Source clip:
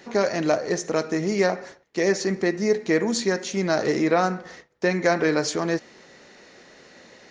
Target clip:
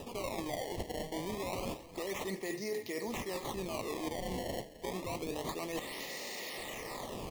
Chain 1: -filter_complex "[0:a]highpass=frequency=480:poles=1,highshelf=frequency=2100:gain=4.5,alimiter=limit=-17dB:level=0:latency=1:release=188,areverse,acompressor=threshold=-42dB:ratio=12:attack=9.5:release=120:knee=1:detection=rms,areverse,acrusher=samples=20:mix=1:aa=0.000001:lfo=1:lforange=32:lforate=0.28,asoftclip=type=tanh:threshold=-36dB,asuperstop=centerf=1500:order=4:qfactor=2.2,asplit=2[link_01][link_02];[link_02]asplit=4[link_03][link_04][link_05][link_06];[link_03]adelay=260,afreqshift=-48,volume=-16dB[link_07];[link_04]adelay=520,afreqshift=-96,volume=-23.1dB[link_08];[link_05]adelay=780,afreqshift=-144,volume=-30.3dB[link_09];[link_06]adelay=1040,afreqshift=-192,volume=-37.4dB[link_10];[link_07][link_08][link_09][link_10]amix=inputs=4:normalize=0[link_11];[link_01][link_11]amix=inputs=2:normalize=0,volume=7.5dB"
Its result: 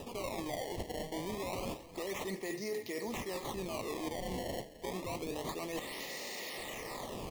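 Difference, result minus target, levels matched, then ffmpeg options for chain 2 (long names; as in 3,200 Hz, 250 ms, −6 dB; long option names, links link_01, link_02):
soft clipping: distortion +12 dB
-filter_complex "[0:a]highpass=frequency=480:poles=1,highshelf=frequency=2100:gain=4.5,alimiter=limit=-17dB:level=0:latency=1:release=188,areverse,acompressor=threshold=-42dB:ratio=12:attack=9.5:release=120:knee=1:detection=rms,areverse,acrusher=samples=20:mix=1:aa=0.000001:lfo=1:lforange=32:lforate=0.28,asoftclip=type=tanh:threshold=-29dB,asuperstop=centerf=1500:order=4:qfactor=2.2,asplit=2[link_01][link_02];[link_02]asplit=4[link_03][link_04][link_05][link_06];[link_03]adelay=260,afreqshift=-48,volume=-16dB[link_07];[link_04]adelay=520,afreqshift=-96,volume=-23.1dB[link_08];[link_05]adelay=780,afreqshift=-144,volume=-30.3dB[link_09];[link_06]adelay=1040,afreqshift=-192,volume=-37.4dB[link_10];[link_07][link_08][link_09][link_10]amix=inputs=4:normalize=0[link_11];[link_01][link_11]amix=inputs=2:normalize=0,volume=7.5dB"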